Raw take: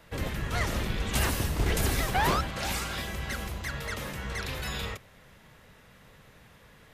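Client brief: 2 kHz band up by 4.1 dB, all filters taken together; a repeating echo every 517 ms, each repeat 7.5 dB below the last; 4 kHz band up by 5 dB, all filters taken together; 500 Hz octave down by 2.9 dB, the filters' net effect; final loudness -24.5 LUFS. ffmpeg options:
-af "equalizer=f=500:t=o:g=-4,equalizer=f=2000:t=o:g=4,equalizer=f=4000:t=o:g=5,aecho=1:1:517|1034|1551|2068|2585:0.422|0.177|0.0744|0.0312|0.0131,volume=1.5"

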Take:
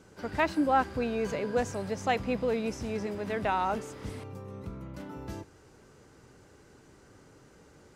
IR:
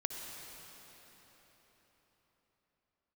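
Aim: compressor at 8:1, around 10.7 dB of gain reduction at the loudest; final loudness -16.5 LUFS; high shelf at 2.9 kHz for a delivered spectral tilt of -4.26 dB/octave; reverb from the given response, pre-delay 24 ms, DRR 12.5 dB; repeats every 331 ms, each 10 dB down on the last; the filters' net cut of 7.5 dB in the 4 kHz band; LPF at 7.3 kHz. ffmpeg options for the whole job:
-filter_complex "[0:a]lowpass=7300,highshelf=f=2900:g=-3,equalizer=f=4000:t=o:g=-8,acompressor=threshold=0.0224:ratio=8,aecho=1:1:331|662|993|1324:0.316|0.101|0.0324|0.0104,asplit=2[s0][s1];[1:a]atrim=start_sample=2205,adelay=24[s2];[s1][s2]afir=irnorm=-1:irlink=0,volume=0.2[s3];[s0][s3]amix=inputs=2:normalize=0,volume=12.6"

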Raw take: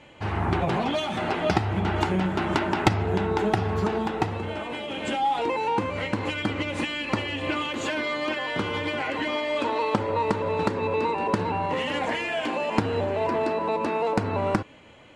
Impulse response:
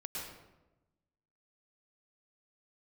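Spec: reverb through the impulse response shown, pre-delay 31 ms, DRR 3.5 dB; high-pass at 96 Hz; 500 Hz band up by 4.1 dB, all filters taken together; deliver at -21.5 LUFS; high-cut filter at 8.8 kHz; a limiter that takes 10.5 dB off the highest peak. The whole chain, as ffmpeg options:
-filter_complex "[0:a]highpass=96,lowpass=8800,equalizer=f=500:t=o:g=5,alimiter=limit=0.178:level=0:latency=1,asplit=2[s0][s1];[1:a]atrim=start_sample=2205,adelay=31[s2];[s1][s2]afir=irnorm=-1:irlink=0,volume=0.668[s3];[s0][s3]amix=inputs=2:normalize=0,volume=1.33"

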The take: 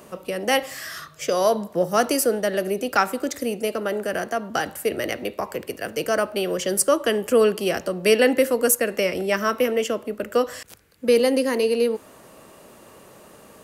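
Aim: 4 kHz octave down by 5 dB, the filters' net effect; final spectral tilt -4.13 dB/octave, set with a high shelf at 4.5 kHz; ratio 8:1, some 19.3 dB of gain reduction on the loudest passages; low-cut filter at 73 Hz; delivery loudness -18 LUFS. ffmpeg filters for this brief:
-af "highpass=73,equalizer=f=4000:t=o:g=-4,highshelf=f=4500:g=-7,acompressor=threshold=0.02:ratio=8,volume=10"

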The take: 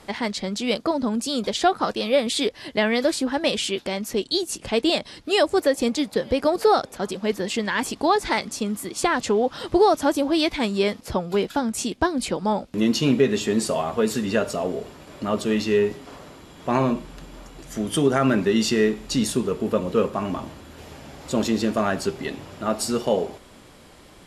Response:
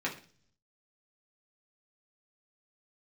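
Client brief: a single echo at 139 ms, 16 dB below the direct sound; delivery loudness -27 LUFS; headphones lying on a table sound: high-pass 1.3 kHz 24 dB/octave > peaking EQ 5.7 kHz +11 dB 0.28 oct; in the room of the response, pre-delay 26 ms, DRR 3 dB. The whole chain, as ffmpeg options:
-filter_complex "[0:a]aecho=1:1:139:0.158,asplit=2[s0][s1];[1:a]atrim=start_sample=2205,adelay=26[s2];[s1][s2]afir=irnorm=-1:irlink=0,volume=0.335[s3];[s0][s3]amix=inputs=2:normalize=0,highpass=f=1300:w=0.5412,highpass=f=1300:w=1.3066,equalizer=f=5700:t=o:w=0.28:g=11,volume=1.06"

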